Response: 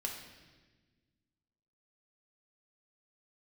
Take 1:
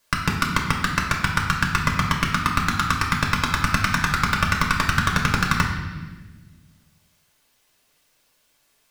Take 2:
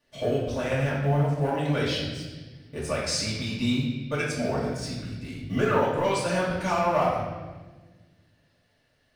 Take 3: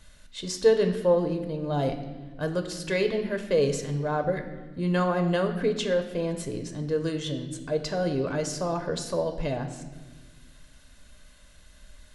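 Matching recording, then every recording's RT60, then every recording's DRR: 1; 1.3, 1.3, 1.3 seconds; −0.5, −8.0, 6.0 decibels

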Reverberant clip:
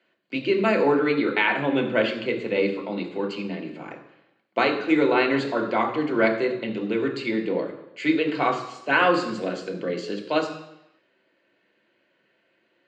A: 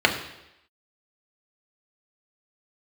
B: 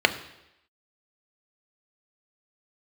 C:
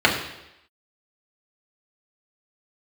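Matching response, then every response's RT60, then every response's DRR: A; 0.85, 0.85, 0.85 seconds; 1.5, 8.0, −3.0 decibels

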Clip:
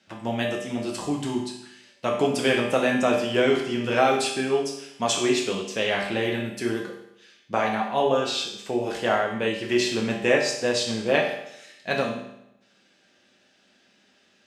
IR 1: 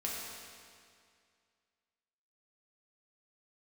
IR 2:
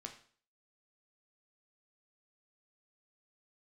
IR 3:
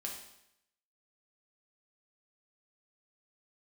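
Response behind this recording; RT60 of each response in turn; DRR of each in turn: 3; 2.2, 0.45, 0.80 seconds; −5.0, 2.5, −1.0 decibels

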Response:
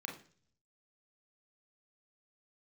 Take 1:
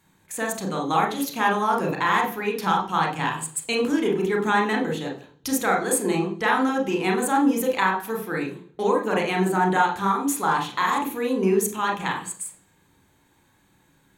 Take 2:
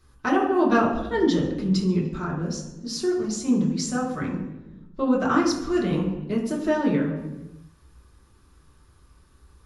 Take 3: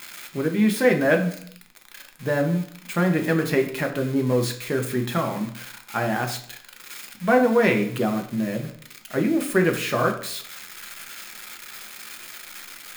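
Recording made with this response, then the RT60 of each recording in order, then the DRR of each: 1; 0.45, 1.1, 0.65 seconds; 0.5, −6.0, 3.5 decibels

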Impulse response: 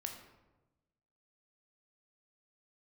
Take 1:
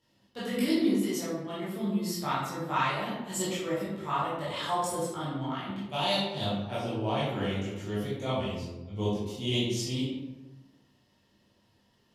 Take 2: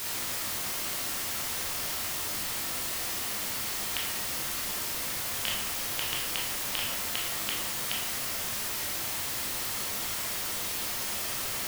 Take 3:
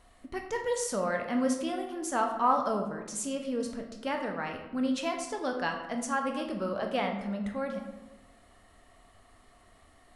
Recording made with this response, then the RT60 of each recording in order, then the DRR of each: 3; 1.1, 1.1, 1.1 seconds; −10.0, −3.5, 3.0 decibels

